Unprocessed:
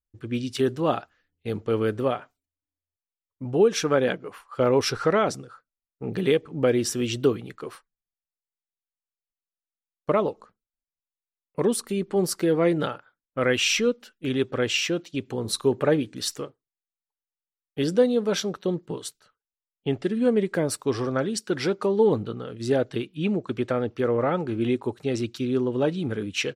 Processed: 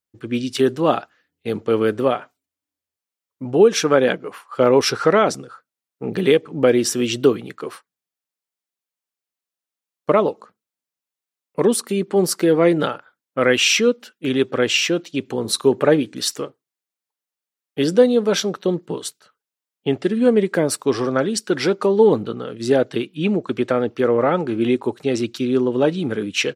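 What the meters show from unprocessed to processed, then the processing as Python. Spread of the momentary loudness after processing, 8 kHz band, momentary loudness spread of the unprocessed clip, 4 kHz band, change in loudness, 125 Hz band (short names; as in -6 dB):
13 LU, +6.5 dB, 12 LU, +6.5 dB, +6.0 dB, +2.5 dB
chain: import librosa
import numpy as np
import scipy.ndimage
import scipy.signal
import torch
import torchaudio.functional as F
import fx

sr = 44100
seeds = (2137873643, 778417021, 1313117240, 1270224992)

y = scipy.signal.sosfilt(scipy.signal.butter(2, 160.0, 'highpass', fs=sr, output='sos'), x)
y = y * librosa.db_to_amplitude(6.5)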